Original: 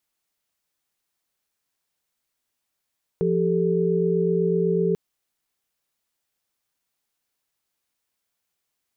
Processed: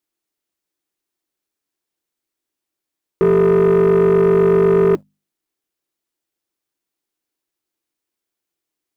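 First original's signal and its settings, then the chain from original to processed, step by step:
chord F3/G4/A4 sine, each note -23 dBFS 1.74 s
peaking EQ 330 Hz +13 dB 0.65 oct; hum notches 50/100/150/200/250 Hz; waveshaping leveller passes 2

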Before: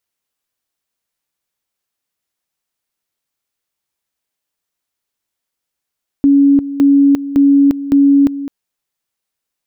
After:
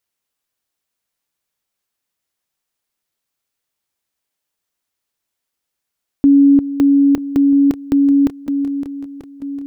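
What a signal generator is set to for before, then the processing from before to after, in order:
two-level tone 280 Hz -5.5 dBFS, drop 14 dB, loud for 0.35 s, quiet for 0.21 s, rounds 4
on a send: shuffle delay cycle 938 ms, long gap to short 1.5:1, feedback 44%, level -11.5 dB

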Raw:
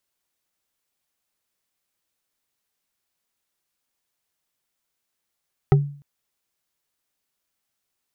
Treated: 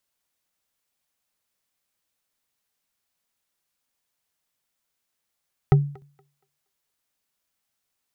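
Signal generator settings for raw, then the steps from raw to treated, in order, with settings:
wood hit bar, length 0.30 s, lowest mode 143 Hz, decay 0.46 s, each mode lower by 4.5 dB, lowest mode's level -9 dB
peaking EQ 360 Hz -4.5 dB 0.29 oct; thinning echo 235 ms, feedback 27%, high-pass 260 Hz, level -22 dB

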